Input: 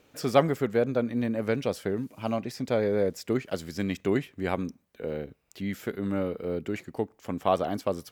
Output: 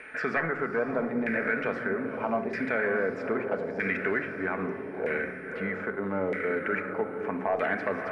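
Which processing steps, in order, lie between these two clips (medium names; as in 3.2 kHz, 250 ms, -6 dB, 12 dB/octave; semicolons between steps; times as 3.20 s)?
one-sided wavefolder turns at -15 dBFS; high-order bell 1.9 kHz +11 dB 1 oct; peak limiter -19 dBFS, peak gain reduction 12.5 dB; simulated room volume 2800 m³, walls furnished, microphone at 1.5 m; whistle 9 kHz -51 dBFS; on a send: echo that smears into a reverb 581 ms, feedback 41%, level -7 dB; on the sum: LFO low-pass saw down 0.79 Hz 830–2000 Hz; tone controls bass -10 dB, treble +5 dB; three bands compressed up and down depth 40%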